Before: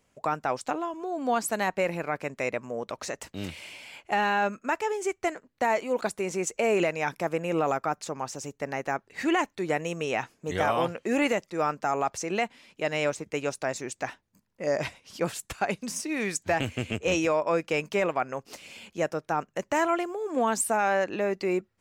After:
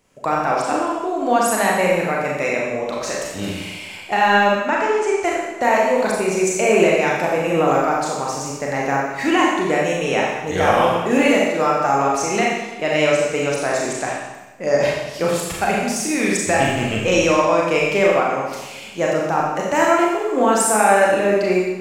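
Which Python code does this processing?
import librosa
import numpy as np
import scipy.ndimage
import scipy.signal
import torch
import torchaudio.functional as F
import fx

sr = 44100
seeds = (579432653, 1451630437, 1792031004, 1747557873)

y = fx.air_absorb(x, sr, metres=60.0, at=(4.54, 5.23))
y = fx.rev_schroeder(y, sr, rt60_s=1.1, comb_ms=29, drr_db=-3.5)
y = F.gain(torch.from_numpy(y), 5.5).numpy()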